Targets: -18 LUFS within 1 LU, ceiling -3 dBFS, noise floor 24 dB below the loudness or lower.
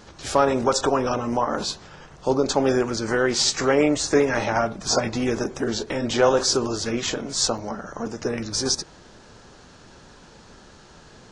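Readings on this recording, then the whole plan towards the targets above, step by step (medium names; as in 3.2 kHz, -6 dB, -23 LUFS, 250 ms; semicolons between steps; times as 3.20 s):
dropouts 1; longest dropout 4.6 ms; loudness -23.0 LUFS; peak level -6.5 dBFS; loudness target -18.0 LUFS
-> interpolate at 7.58 s, 4.6 ms; trim +5 dB; peak limiter -3 dBFS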